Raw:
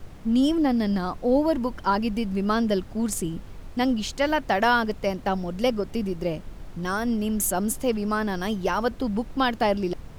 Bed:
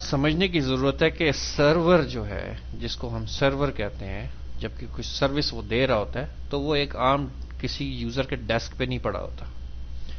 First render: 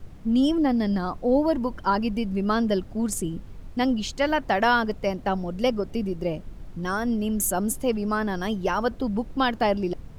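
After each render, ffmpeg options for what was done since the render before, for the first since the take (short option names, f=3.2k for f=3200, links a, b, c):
-af "afftdn=nr=6:nf=-42"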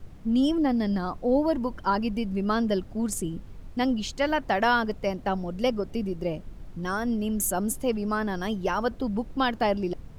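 -af "volume=-2dB"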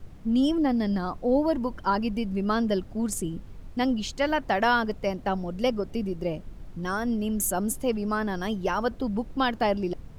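-af anull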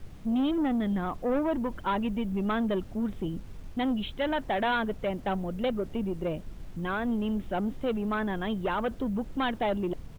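-af "aresample=8000,asoftclip=type=tanh:threshold=-22.5dB,aresample=44100,acrusher=bits=9:mix=0:aa=0.000001"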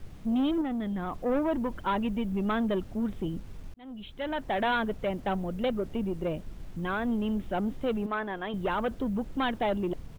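-filter_complex "[0:a]asettb=1/sr,asplit=3[a][b][c];[a]atrim=end=0.614[d];[b]atrim=start=0.61:end=1.26,asetpts=PTS-STARTPTS,afade=t=in:d=0.004:c=qsin,afade=t=out:st=0.646:d=0.004:c=qsin,acompressor=threshold=-29dB:ratio=6:attack=3.2:release=140:knee=1:detection=peak[e];[c]atrim=start=1.256[f];[d][e]acrossfade=d=0.004:c1=hsin:c2=qsin[g];[g][f]acrossfade=d=0.004:c1=qsin:c2=hsin,asettb=1/sr,asplit=3[h][i][j];[h]atrim=end=8.064[k];[i]atrim=start=8.06:end=8.54,asetpts=PTS-STARTPTS,afade=t=in:d=0.004:c=qsin,afade=t=out:st=0.476:d=0.004:c=qsin,bass=f=250:g=-13,treble=f=4k:g=-9[l];[j]atrim=start=8.536[m];[k][l]acrossfade=d=0.004:c1=hsin:c2=qsin[n];[n][m]acrossfade=d=0.004:c1=qsin:c2=hsin,asplit=2[o][p];[o]atrim=end=3.74,asetpts=PTS-STARTPTS,afade=t=out:st=3.736:d=0.004:c=hsin[q];[p]atrim=start=3.74,asetpts=PTS-STARTPTS,afade=t=in:d=0.87[r];[q][r]concat=n=2:v=0:a=1"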